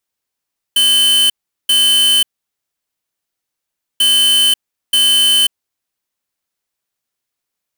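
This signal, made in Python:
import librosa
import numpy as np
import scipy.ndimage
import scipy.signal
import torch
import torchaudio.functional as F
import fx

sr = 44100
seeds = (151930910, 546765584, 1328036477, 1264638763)

y = fx.beep_pattern(sr, wave='square', hz=3050.0, on_s=0.54, off_s=0.39, beeps=2, pause_s=1.77, groups=2, level_db=-11.0)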